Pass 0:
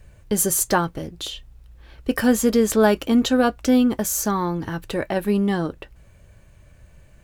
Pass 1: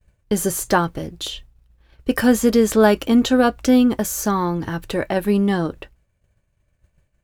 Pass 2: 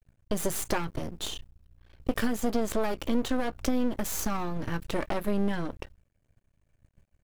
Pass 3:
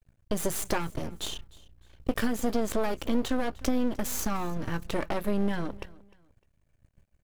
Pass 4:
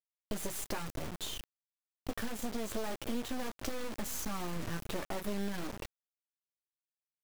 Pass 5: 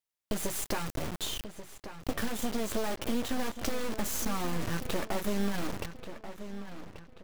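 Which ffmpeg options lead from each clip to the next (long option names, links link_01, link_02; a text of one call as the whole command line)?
ffmpeg -i in.wav -filter_complex "[0:a]agate=range=-33dB:threshold=-36dB:ratio=3:detection=peak,acrossover=split=2900[link_01][link_02];[link_02]alimiter=limit=-19.5dB:level=0:latency=1:release=39[link_03];[link_01][link_03]amix=inputs=2:normalize=0,volume=2.5dB" out.wav
ffmpeg -i in.wav -af "lowshelf=frequency=290:gain=4.5,acompressor=threshold=-17dB:ratio=6,aeval=exprs='max(val(0),0)':channel_layout=same,volume=-2.5dB" out.wav
ffmpeg -i in.wav -af "aecho=1:1:303|606:0.0794|0.0238" out.wav
ffmpeg -i in.wav -af "acompressor=threshold=-31dB:ratio=2.5,flanger=delay=8.2:depth=3.5:regen=-51:speed=0.33:shape=triangular,acrusher=bits=6:mix=0:aa=0.000001" out.wav
ffmpeg -i in.wav -filter_complex "[0:a]asplit=2[link_01][link_02];[link_02]adelay=1135,lowpass=frequency=4200:poles=1,volume=-11dB,asplit=2[link_03][link_04];[link_04]adelay=1135,lowpass=frequency=4200:poles=1,volume=0.41,asplit=2[link_05][link_06];[link_06]adelay=1135,lowpass=frequency=4200:poles=1,volume=0.41,asplit=2[link_07][link_08];[link_08]adelay=1135,lowpass=frequency=4200:poles=1,volume=0.41[link_09];[link_01][link_03][link_05][link_07][link_09]amix=inputs=5:normalize=0,volume=5dB" out.wav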